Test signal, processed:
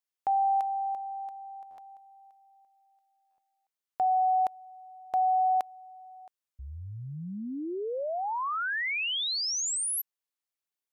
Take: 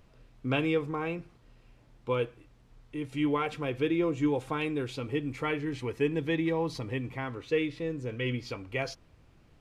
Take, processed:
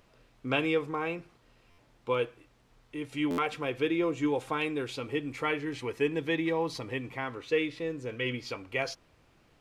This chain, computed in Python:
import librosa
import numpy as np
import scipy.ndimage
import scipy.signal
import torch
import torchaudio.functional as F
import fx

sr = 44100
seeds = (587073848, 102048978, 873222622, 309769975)

y = fx.low_shelf(x, sr, hz=230.0, db=-11.0)
y = fx.buffer_glitch(y, sr, at_s=(1.7, 3.3), block=512, repeats=6)
y = y * 10.0 ** (2.5 / 20.0)